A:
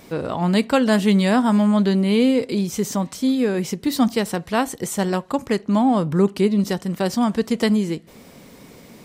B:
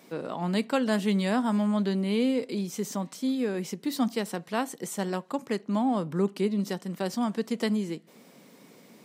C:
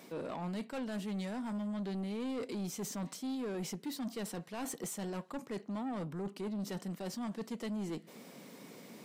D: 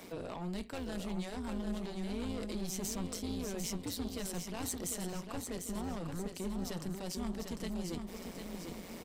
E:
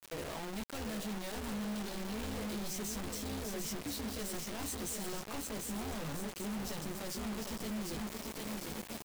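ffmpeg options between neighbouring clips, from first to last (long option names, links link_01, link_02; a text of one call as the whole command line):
ffmpeg -i in.wav -af "highpass=frequency=160:width=0.5412,highpass=frequency=160:width=1.3066,volume=-8.5dB" out.wav
ffmpeg -i in.wav -af "areverse,acompressor=threshold=-33dB:ratio=6,areverse,asoftclip=type=tanh:threshold=-35.5dB,volume=1.5dB" out.wav
ffmpeg -i in.wav -filter_complex "[0:a]tremolo=f=180:d=0.75,acrossover=split=140|3000[link_01][link_02][link_03];[link_02]acompressor=threshold=-51dB:ratio=2[link_04];[link_01][link_04][link_03]amix=inputs=3:normalize=0,asplit=2[link_05][link_06];[link_06]aecho=0:1:748|1496|2244|2992|3740|4488:0.501|0.236|0.111|0.052|0.0245|0.0115[link_07];[link_05][link_07]amix=inputs=2:normalize=0,volume=7dB" out.wav
ffmpeg -i in.wav -filter_complex "[0:a]asoftclip=type=tanh:threshold=-36.5dB,asplit=2[link_01][link_02];[link_02]adelay=14,volume=-4dB[link_03];[link_01][link_03]amix=inputs=2:normalize=0,acrusher=bits=6:mix=0:aa=0.000001" out.wav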